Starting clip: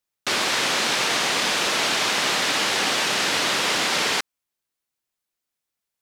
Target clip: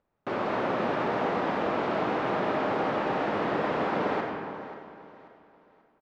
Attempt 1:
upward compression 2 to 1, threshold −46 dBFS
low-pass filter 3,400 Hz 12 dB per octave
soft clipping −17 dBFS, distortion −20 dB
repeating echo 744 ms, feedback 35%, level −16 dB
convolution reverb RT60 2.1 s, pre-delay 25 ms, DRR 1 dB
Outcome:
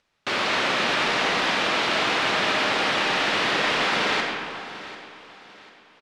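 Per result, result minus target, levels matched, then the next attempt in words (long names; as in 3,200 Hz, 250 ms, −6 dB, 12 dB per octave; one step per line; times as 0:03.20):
4,000 Hz band +13.5 dB; echo 208 ms late
upward compression 2 to 1, threshold −46 dBFS
low-pass filter 850 Hz 12 dB per octave
soft clipping −17 dBFS, distortion −30 dB
repeating echo 744 ms, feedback 35%, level −16 dB
convolution reverb RT60 2.1 s, pre-delay 25 ms, DRR 1 dB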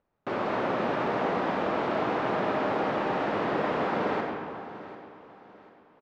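echo 208 ms late
upward compression 2 to 1, threshold −46 dBFS
low-pass filter 850 Hz 12 dB per octave
soft clipping −17 dBFS, distortion −30 dB
repeating echo 536 ms, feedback 35%, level −16 dB
convolution reverb RT60 2.1 s, pre-delay 25 ms, DRR 1 dB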